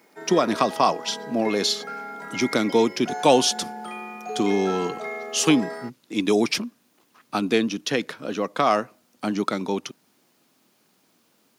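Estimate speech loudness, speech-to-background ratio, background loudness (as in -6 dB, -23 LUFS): -23.5 LUFS, 10.5 dB, -34.0 LUFS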